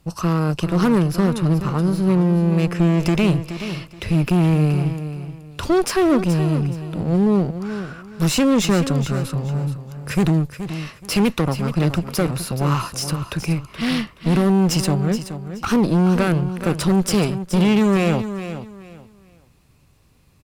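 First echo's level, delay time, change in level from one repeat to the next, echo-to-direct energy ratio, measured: -11.0 dB, 0.425 s, -12.0 dB, -10.5 dB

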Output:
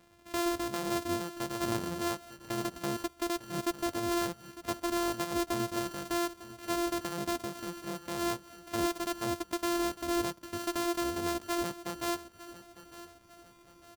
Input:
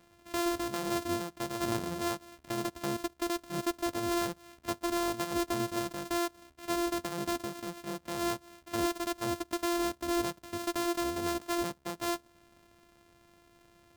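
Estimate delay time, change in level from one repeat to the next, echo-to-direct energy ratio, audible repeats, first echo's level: 0.902 s, -7.5 dB, -14.5 dB, 3, -15.5 dB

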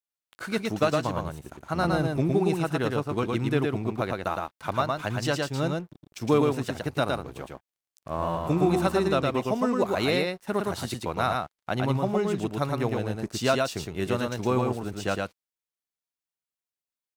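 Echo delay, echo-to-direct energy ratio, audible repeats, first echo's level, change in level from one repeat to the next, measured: 0.112 s, -3.0 dB, 1, -3.0 dB, no steady repeat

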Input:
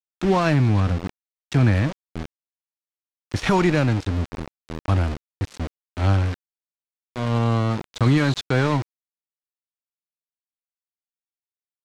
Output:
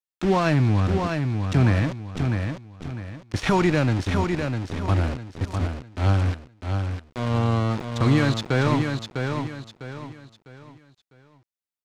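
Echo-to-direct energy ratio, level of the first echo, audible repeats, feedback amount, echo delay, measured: -5.0 dB, -5.5 dB, 4, 34%, 0.652 s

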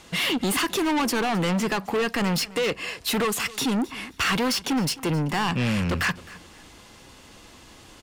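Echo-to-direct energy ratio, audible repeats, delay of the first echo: -19.5 dB, 2, 0.263 s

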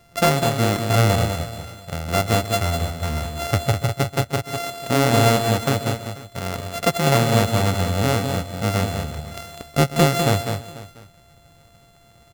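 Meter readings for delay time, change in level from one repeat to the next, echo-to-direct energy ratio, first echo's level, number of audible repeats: 0.133 s, no steady repeat, -5.5 dB, -16.5 dB, 5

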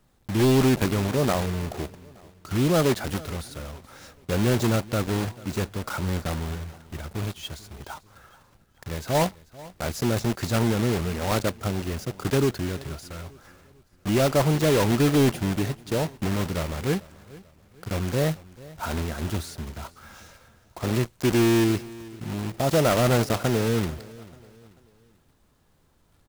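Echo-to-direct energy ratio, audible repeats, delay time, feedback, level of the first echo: -20.0 dB, 2, 0.44 s, 40%, -20.5 dB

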